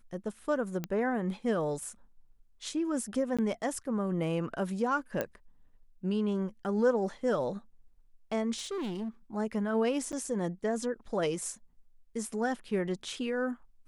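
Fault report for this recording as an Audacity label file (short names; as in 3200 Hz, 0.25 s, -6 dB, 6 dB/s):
0.840000	0.840000	pop -20 dBFS
3.370000	3.390000	gap 16 ms
5.210000	5.210000	pop -17 dBFS
8.580000	9.090000	clipped -32.5 dBFS
10.120000	10.130000	gap 8.6 ms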